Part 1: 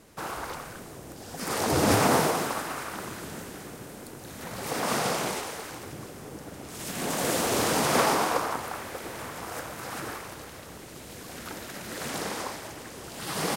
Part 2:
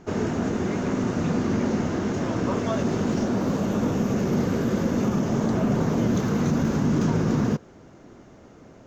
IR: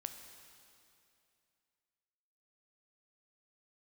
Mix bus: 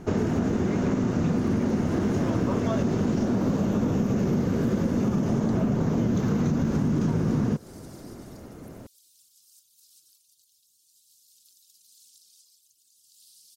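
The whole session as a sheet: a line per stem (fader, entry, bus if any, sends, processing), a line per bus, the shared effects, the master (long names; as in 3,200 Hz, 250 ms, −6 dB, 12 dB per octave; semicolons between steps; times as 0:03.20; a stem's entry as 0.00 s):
−9.0 dB, 0.00 s, no send, reverb reduction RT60 1.5 s; inverse Chebyshev high-pass filter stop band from 2,100 Hz; downward compressor, threshold −44 dBFS, peak gain reduction 14 dB
+1.5 dB, 0.00 s, no send, no processing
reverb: not used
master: low-shelf EQ 370 Hz +6.5 dB; downward compressor, threshold −21 dBFS, peak gain reduction 9.5 dB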